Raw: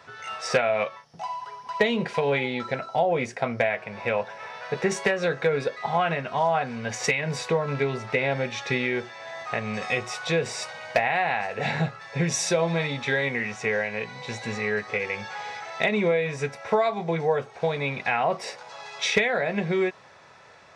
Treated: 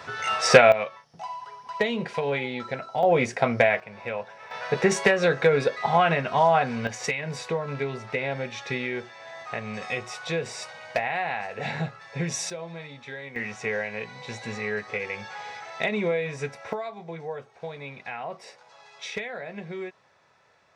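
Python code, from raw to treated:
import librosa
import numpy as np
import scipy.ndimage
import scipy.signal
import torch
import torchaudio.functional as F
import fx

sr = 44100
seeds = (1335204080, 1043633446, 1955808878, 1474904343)

y = fx.gain(x, sr, db=fx.steps((0.0, 8.5), (0.72, -3.0), (3.03, 4.0), (3.8, -6.0), (4.51, 3.5), (6.87, -4.0), (12.5, -13.5), (13.36, -3.0), (16.73, -11.0)))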